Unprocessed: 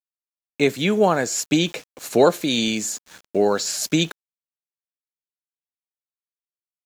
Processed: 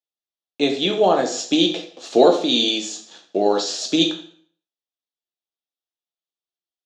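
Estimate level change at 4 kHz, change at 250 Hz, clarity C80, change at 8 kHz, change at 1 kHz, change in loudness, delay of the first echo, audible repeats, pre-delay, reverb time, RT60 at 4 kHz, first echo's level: +5.5 dB, +1.0 dB, 12.0 dB, −4.5 dB, +2.5 dB, +2.0 dB, no echo audible, no echo audible, 4 ms, 0.55 s, 0.50 s, no echo audible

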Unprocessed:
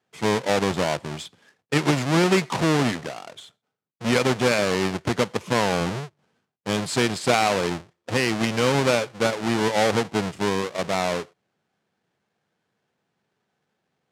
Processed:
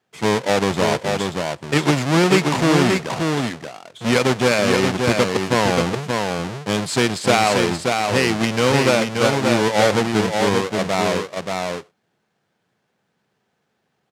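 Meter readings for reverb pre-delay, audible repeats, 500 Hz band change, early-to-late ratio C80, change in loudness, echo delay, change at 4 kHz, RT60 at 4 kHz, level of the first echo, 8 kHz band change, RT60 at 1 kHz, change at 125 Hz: no reverb audible, 1, +5.0 dB, no reverb audible, +4.0 dB, 580 ms, +5.0 dB, no reverb audible, −4.0 dB, +5.0 dB, no reverb audible, +5.0 dB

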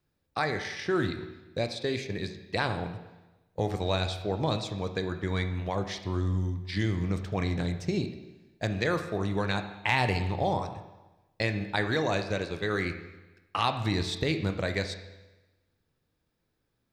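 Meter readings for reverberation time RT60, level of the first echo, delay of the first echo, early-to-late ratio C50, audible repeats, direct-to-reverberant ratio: 1.1 s, no echo audible, no echo audible, 9.5 dB, no echo audible, 7.0 dB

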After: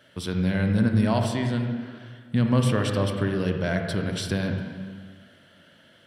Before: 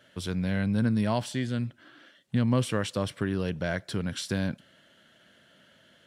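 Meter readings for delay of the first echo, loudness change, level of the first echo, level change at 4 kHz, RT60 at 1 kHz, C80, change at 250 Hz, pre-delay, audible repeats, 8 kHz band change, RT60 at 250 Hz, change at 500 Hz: no echo audible, +4.0 dB, no echo audible, +3.0 dB, 1.7 s, 5.5 dB, +4.0 dB, 26 ms, no echo audible, +1.5 dB, 1.7 s, +4.5 dB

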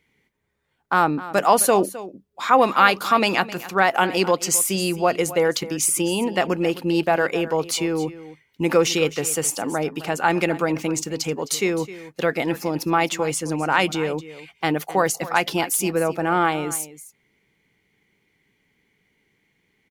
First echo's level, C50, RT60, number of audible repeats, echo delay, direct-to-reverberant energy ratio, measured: −16.0 dB, no reverb audible, no reverb audible, 1, 261 ms, no reverb audible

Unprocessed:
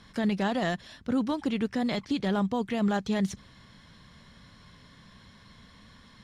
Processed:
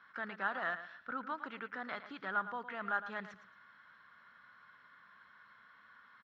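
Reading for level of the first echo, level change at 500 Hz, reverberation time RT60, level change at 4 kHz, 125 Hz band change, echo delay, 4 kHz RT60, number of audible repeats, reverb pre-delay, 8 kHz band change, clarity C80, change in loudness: −12.0 dB, −14.5 dB, no reverb audible, −16.0 dB, below −20 dB, 111 ms, no reverb audible, 2, no reverb audible, below −25 dB, no reverb audible, −10.5 dB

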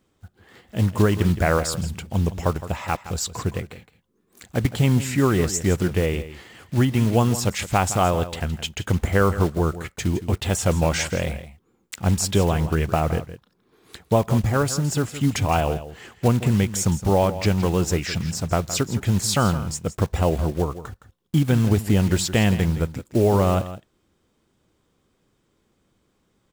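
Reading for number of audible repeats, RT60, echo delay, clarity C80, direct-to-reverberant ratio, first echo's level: 1, no reverb audible, 165 ms, no reverb audible, no reverb audible, −13.5 dB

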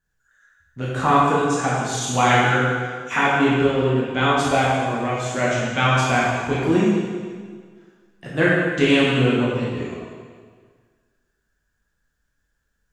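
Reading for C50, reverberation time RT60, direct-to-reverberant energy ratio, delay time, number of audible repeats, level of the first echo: −1.5 dB, 1.7 s, −7.5 dB, no echo audible, no echo audible, no echo audible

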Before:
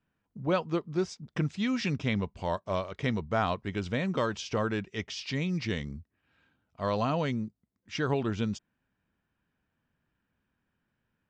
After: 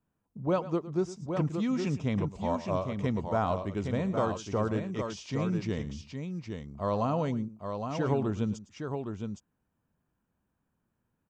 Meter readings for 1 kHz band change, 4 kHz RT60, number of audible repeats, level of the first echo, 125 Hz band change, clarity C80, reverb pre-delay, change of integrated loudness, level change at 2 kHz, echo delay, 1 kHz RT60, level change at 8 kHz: +0.5 dB, no reverb audible, 2, −15.5 dB, +1.0 dB, no reverb audible, no reverb audible, −0.5 dB, −7.0 dB, 109 ms, no reverb audible, −2.0 dB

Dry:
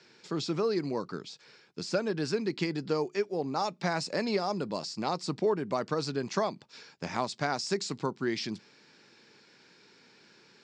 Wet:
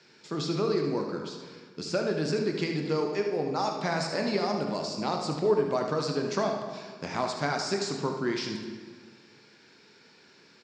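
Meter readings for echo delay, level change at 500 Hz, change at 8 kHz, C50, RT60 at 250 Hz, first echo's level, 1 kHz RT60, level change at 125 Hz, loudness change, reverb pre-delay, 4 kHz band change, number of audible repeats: 75 ms, +3.0 dB, +1.5 dB, 3.5 dB, 1.8 s, −8.5 dB, 1.6 s, +3.0 dB, +2.5 dB, 14 ms, +2.0 dB, 1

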